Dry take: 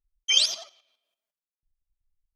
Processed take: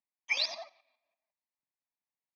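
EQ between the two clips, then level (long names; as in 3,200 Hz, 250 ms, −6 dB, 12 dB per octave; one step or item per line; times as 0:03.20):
high-pass filter 240 Hz 24 dB per octave
high-frequency loss of the air 350 metres
phaser with its sweep stopped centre 2,100 Hz, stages 8
+6.0 dB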